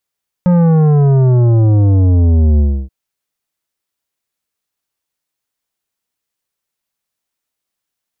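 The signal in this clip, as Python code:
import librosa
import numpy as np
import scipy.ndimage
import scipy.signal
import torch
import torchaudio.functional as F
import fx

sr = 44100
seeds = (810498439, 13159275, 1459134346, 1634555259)

y = fx.sub_drop(sr, level_db=-8, start_hz=180.0, length_s=2.43, drive_db=11, fade_s=0.3, end_hz=65.0)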